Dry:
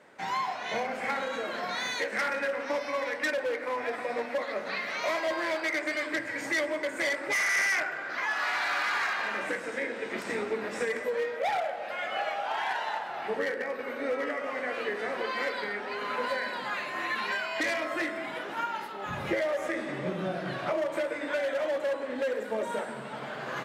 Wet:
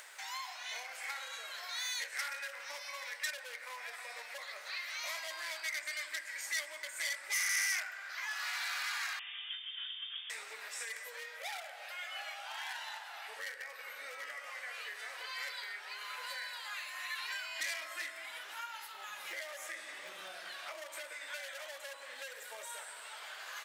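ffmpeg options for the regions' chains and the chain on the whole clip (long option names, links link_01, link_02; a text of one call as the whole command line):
ffmpeg -i in.wav -filter_complex "[0:a]asettb=1/sr,asplit=3[link_01][link_02][link_03];[link_01]atrim=end=9.194[link_04];[link_02]atrim=start=9.19:end=10.3,asetpts=PTS-STARTPTS,afade=type=in:duration=0.004:curve=qsin,afade=type=out:start_time=1.106:duration=0.004:curve=qsin,equalizer=frequency=1700:width_type=o:width=1.8:gain=-9.5,aeval=exprs='clip(val(0),-1,0.00841)':channel_layout=same,lowpass=frequency=3100:width_type=q:width=0.5098,lowpass=frequency=3100:width_type=q:width=0.6013,lowpass=frequency=3100:width_type=q:width=0.9,lowpass=frequency=3100:width_type=q:width=2.563,afreqshift=-3600[link_05];[link_03]atrim=start=10.296[link_06];[link_04][link_05]acrossfade=duration=0.004:curve1=hsin:curve2=qsin[link_07];[link_07][link_06]acrossfade=duration=0.004:curve1=qsin:curve2=hsin,asettb=1/sr,asplit=3[link_08][link_09][link_10];[link_08]atrim=end=17.194[link_11];[link_09]atrim=start=17.19:end=21.12,asetpts=PTS-STARTPTS,afade=type=in:duration=0.004:curve=qsin,afade=type=out:start_time=3.926:duration=0.004:curve=qsin,bass=frequency=250:gain=14,treble=frequency=4000:gain=-1,volume=18dB,asoftclip=hard,volume=-18dB[link_12];[link_10]atrim=start=21.116[link_13];[link_11][link_12]acrossfade=duration=0.004:curve1=hsin:curve2=qsin[link_14];[link_14][link_13]acrossfade=duration=0.004:curve1=qsin:curve2=hsin,highpass=640,aderivative,acompressor=mode=upward:threshold=-44dB:ratio=2.5,volume=3dB" out.wav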